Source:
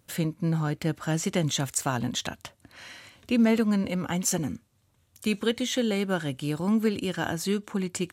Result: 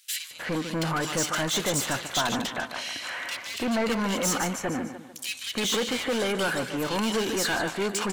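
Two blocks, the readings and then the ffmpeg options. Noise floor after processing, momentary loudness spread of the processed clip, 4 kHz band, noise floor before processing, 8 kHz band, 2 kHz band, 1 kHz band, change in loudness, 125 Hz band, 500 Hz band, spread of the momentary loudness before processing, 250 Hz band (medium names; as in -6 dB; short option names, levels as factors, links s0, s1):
-44 dBFS, 7 LU, +5.5 dB, -67 dBFS, +3.0 dB, +6.0 dB, +5.5 dB, 0.0 dB, -6.0 dB, +1.5 dB, 16 LU, -4.0 dB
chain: -filter_complex "[0:a]asplit=2[s0][s1];[s1]aecho=0:1:148|296|444|592:0.158|0.0634|0.0254|0.0101[s2];[s0][s2]amix=inputs=2:normalize=0,asplit=2[s3][s4];[s4]highpass=f=720:p=1,volume=35.5,asoftclip=type=tanh:threshold=0.316[s5];[s3][s5]amix=inputs=2:normalize=0,lowpass=f=5400:p=1,volume=0.501,lowshelf=f=320:g=-5.5,acrossover=split=2300[s6][s7];[s6]adelay=310[s8];[s8][s7]amix=inputs=2:normalize=0,volume=0.473"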